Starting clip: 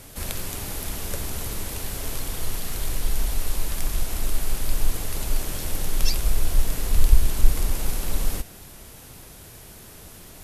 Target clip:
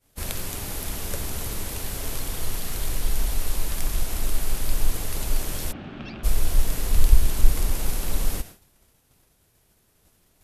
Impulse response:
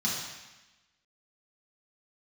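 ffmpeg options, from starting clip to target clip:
-filter_complex "[0:a]agate=range=-33dB:threshold=-31dB:ratio=3:detection=peak,asplit=3[a][b][c];[a]afade=t=out:st=5.71:d=0.02[d];[b]highpass=130,equalizer=f=230:t=q:w=4:g=8,equalizer=f=480:t=q:w=4:g=-10,equalizer=f=970:t=q:w=4:g=-8,equalizer=f=2k:t=q:w=4:g=-8,lowpass=f=2.6k:w=0.5412,lowpass=f=2.6k:w=1.3066,afade=t=in:st=5.71:d=0.02,afade=t=out:st=6.23:d=0.02[e];[c]afade=t=in:st=6.23:d=0.02[f];[d][e][f]amix=inputs=3:normalize=0"

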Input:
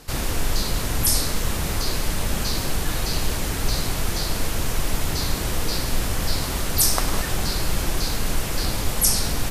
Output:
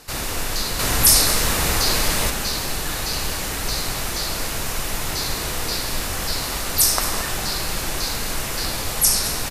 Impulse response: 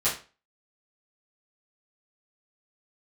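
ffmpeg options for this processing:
-filter_complex "[0:a]asettb=1/sr,asplit=3[a][b][c];[a]atrim=end=0.794[d];[b]atrim=start=0.79:end=2.3,asetpts=PTS-STARTPTS,afade=t=in:d=0.004:c=qsin,afade=t=out:st=1.506:d=0.004:c=qsin,acontrast=46[e];[c]atrim=start=2.296[f];[d][e]acrossfade=d=0.004:c1=hsin:c2=qsin[g];[g][f]acrossfade=d=0.004:c1=qsin:c2=hsin,lowshelf=f=400:g=-8.5,bandreject=f=3.2k:w=28,aecho=1:1:221:0.224,asplit=2[h][i];[1:a]atrim=start_sample=2205,adelay=53[j];[i][j]afir=irnorm=-1:irlink=0,volume=-20dB[k];[h][k]amix=inputs=2:normalize=0,volume=2.5dB"

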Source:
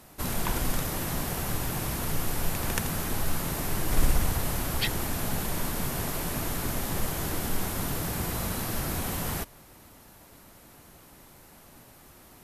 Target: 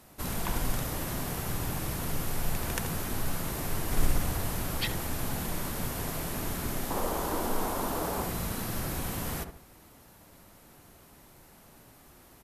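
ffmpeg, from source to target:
-filter_complex "[0:a]asettb=1/sr,asplit=3[a][b][c];[a]atrim=end=6.904[d];[b]atrim=start=6.9:end=8.24,asetpts=PTS-STARTPTS,afade=t=in:d=0.004:c=qsin,afade=t=out:st=1.336:d=0.004:c=qsin,equalizer=f=125:t=o:w=1:g=-10,equalizer=f=250:t=o:w=1:g=4,equalizer=f=500:t=o:w=1:g=6,equalizer=f=1k:t=o:w=1:g=9,equalizer=f=2k:t=o:w=1:g=-3[e];[c]atrim=start=8.236[f];[d][e]acrossfade=d=0.004:c1=hsin:c2=qsin[g];[g][f]acrossfade=d=0.004:c1=qsin:c2=hsin,asplit=2[h][i];[i]adelay=70,lowpass=f=1k:p=1,volume=-5dB,asplit=2[j][k];[k]adelay=70,lowpass=f=1k:p=1,volume=0.4,asplit=2[l][m];[m]adelay=70,lowpass=f=1k:p=1,volume=0.4,asplit=2[n][o];[o]adelay=70,lowpass=f=1k:p=1,volume=0.4,asplit=2[p][q];[q]adelay=70,lowpass=f=1k:p=1,volume=0.4[r];[j][l][n][p][r]amix=inputs=5:normalize=0[s];[h][s]amix=inputs=2:normalize=0,volume=-3.5dB"

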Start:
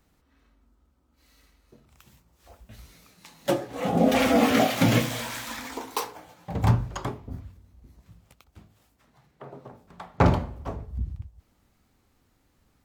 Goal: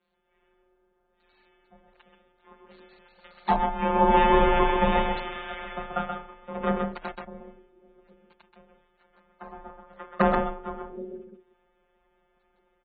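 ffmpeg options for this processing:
-filter_complex "[0:a]lowshelf=f=160:g=-9.5,asettb=1/sr,asplit=3[a][b][c];[a]atrim=end=3.774[d];[b]atrim=start=3.77:end=5.89,asetpts=PTS-STARTPTS,afade=t=in:d=0.004:c=qsin,afade=t=out:st=2.116:d=0.004:c=qsin,aecho=1:1:7.3:0.58,atrim=end_sample=93492[e];[c]atrim=start=5.886[f];[d][e]acrossfade=d=0.004:c1=hsin:c2=qsin[g];[g][f]acrossfade=d=0.004:c1=qsin:c2=hsin,adynamicequalizer=threshold=0.01:dfrequency=440:dqfactor=2.3:tfrequency=440:tqfactor=2.3:attack=5:release=100:ratio=0.375:range=3:mode=boostabove:tftype=bell,acrossover=split=2100[h][i];[h]dynaudnorm=f=120:g=5:m=7dB[j];[i]alimiter=level_in=2dB:limit=-24dB:level=0:latency=1:release=47,volume=-2dB[k];[j][k]amix=inputs=2:normalize=0,aeval=exprs='val(0)*sin(2*PI*320*n/s)':c=same,asettb=1/sr,asplit=3[l][m][n];[l]atrim=end=6.824[o];[m]atrim=start=6.82:end=7.28,asetpts=PTS-STARTPTS,afade=t=in:d=0.004:c=qsin,afade=t=out:st=0.456:d=0.004:c=qsin,aeval=exprs='0.224*(cos(1*acos(clip(val(0)/0.224,-1,1)))-cos(1*PI/2))+0.0447*(cos(2*acos(clip(val(0)/0.224,-1,1)))-cos(2*PI/2))+0.0398*(cos(3*acos(clip(val(0)/0.224,-1,1)))-cos(3*PI/2))+0.0158*(cos(7*acos(clip(val(0)/0.224,-1,1)))-cos(7*PI/2))+0.00631*(cos(8*acos(clip(val(0)/0.224,-1,1)))-cos(8*PI/2))':c=same[p];[n]atrim=start=7.276[q];[o][p]acrossfade=d=0.004:c1=hsin:c2=qsin[r];[r][q]acrossfade=d=0.004:c1=qsin:c2=hsin,afftfilt=real='hypot(re,im)*cos(PI*b)':imag='0':win_size=1024:overlap=0.75,afreqshift=24,asplit=2[s][t];[t]aecho=0:1:130:0.596[u];[s][u]amix=inputs=2:normalize=0,aresample=16000,aresample=44100" -ar 32000 -c:a aac -b:a 16k

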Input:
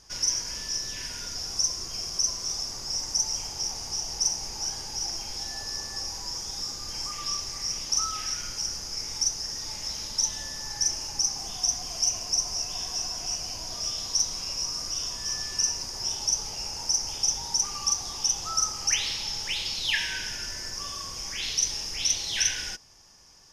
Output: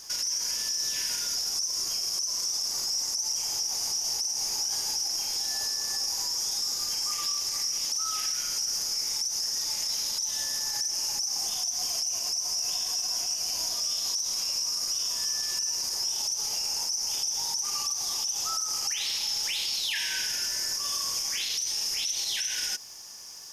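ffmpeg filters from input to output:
-af "aemphasis=mode=production:type=bsi,acompressor=threshold=-21dB:ratio=6,alimiter=level_in=2dB:limit=-24dB:level=0:latency=1:release=81,volume=-2dB,volume=5dB"

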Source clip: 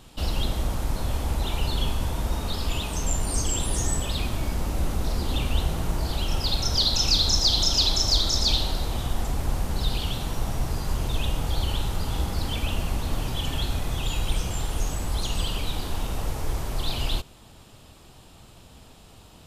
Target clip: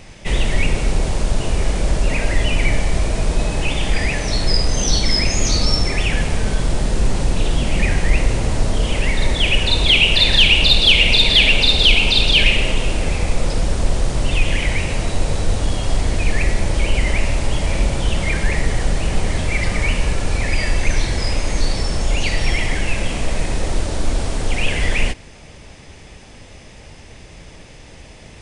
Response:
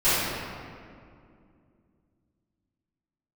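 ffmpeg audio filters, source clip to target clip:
-af "acontrast=69,asetrate=30209,aresample=44100,volume=3dB"

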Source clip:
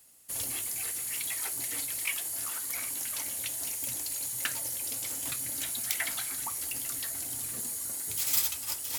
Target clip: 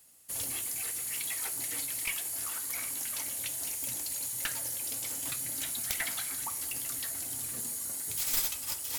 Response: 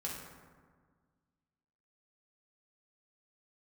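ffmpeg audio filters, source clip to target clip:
-filter_complex "[0:a]aeval=exprs='clip(val(0),-1,0.0422)':c=same,asplit=2[a][b];[1:a]atrim=start_sample=2205[c];[b][c]afir=irnorm=-1:irlink=0,volume=-13dB[d];[a][d]amix=inputs=2:normalize=0,volume=-2dB"

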